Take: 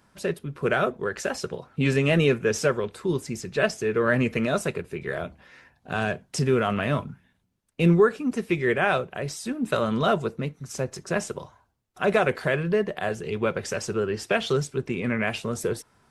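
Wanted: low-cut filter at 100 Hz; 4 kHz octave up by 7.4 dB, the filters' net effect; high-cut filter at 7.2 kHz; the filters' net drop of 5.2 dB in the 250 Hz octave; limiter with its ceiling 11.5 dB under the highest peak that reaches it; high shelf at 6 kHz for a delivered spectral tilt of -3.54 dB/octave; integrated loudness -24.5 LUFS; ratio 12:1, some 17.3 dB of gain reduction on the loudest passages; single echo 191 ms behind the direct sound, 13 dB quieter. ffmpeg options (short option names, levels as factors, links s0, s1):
-af "highpass=100,lowpass=7200,equalizer=f=250:t=o:g=-7.5,equalizer=f=4000:t=o:g=8.5,highshelf=f=6000:g=5.5,acompressor=threshold=0.02:ratio=12,alimiter=level_in=1.5:limit=0.0631:level=0:latency=1,volume=0.668,aecho=1:1:191:0.224,volume=5.62"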